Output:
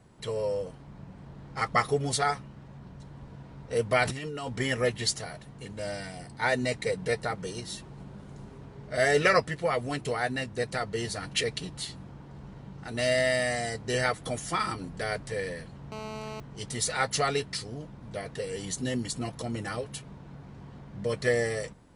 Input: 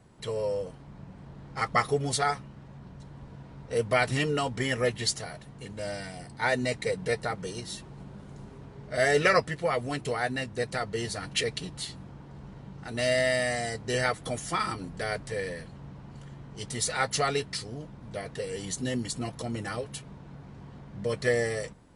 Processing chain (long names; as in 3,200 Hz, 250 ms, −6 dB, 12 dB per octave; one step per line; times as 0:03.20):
0:04.04–0:04.48: compressor whose output falls as the input rises −35 dBFS, ratio −1
0:15.92–0:16.40: phone interference −39 dBFS